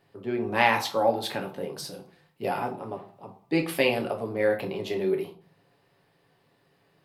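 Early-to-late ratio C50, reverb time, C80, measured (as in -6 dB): 12.5 dB, 0.45 s, 17.0 dB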